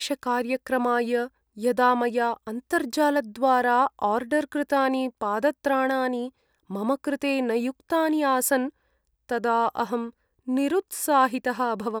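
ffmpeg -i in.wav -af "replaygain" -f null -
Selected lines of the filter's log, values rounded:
track_gain = +5.2 dB
track_peak = 0.272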